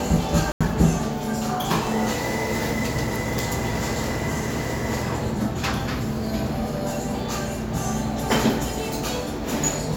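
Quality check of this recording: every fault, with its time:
0.52–0.61 s: dropout 86 ms

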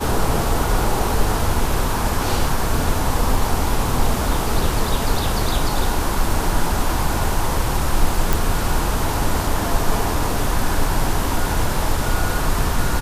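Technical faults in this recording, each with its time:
8.33 s: pop

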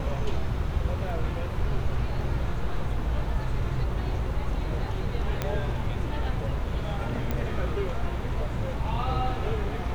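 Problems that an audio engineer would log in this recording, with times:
5.42 s: pop -13 dBFS
7.31 s: pop -16 dBFS

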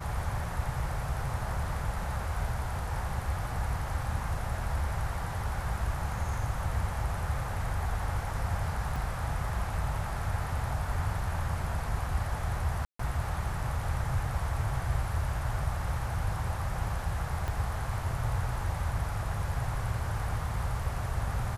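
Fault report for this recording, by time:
8.96 s: dropout 2.4 ms
12.85–12.99 s: dropout 144 ms
17.48 s: pop -21 dBFS

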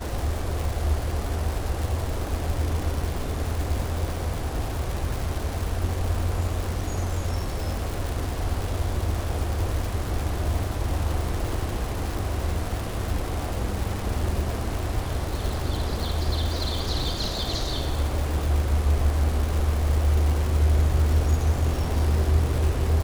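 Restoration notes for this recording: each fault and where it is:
crackle 310 per s -28 dBFS

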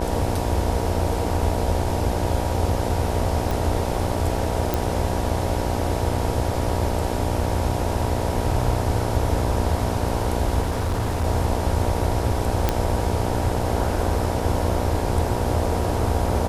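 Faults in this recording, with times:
buzz 60 Hz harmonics 16 -27 dBFS
3.51 s: pop
4.74 s: pop
10.62–11.24 s: clipped -19 dBFS
12.69 s: pop -5 dBFS

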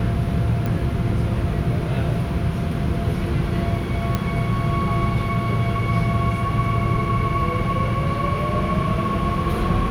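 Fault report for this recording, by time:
0.66 s: pop
4.15 s: pop -8 dBFS

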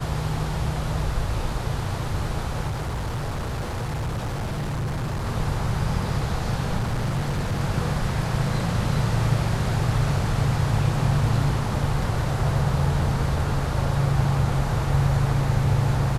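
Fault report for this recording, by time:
2.67–5.26 s: clipped -24 dBFS
6.76–7.61 s: clipped -20.5 dBFS

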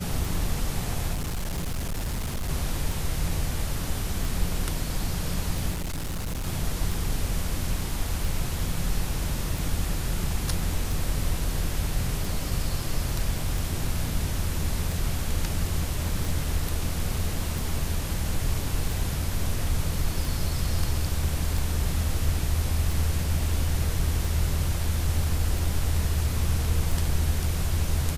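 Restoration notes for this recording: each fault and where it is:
tick
1.13–2.50 s: clipped -25.5 dBFS
5.71–6.47 s: clipped -27 dBFS

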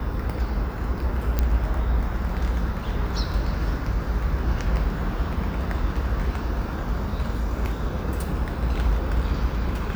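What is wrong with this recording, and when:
1.39 s: pop -9 dBFS

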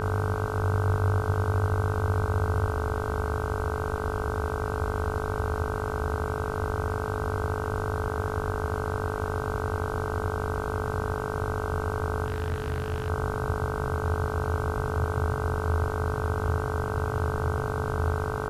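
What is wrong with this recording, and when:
buzz 50 Hz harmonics 31 -33 dBFS
whine 430 Hz -34 dBFS
12.26–13.10 s: clipped -24.5 dBFS

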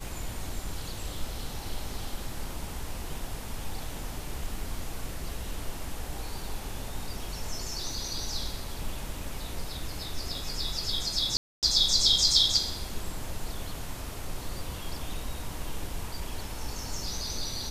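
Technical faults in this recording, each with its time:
11.37–11.63 s: dropout 258 ms

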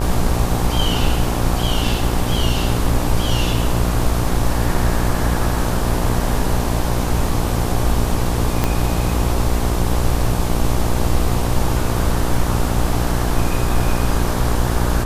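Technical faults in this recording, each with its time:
buzz 60 Hz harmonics 20 -21 dBFS
8.64 s: pop -3 dBFS

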